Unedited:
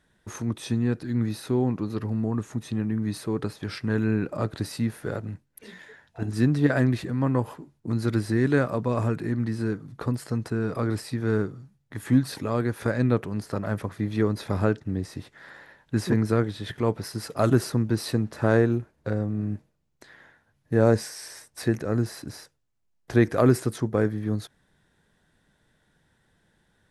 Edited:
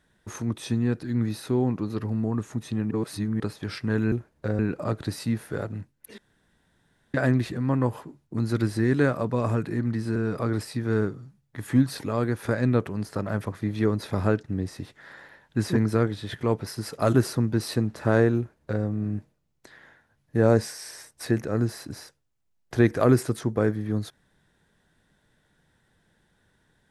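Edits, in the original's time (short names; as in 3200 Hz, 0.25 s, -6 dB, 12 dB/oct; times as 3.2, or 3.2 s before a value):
2.91–3.4 reverse
5.71–6.67 room tone
9.69–10.53 cut
18.74–19.21 copy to 4.12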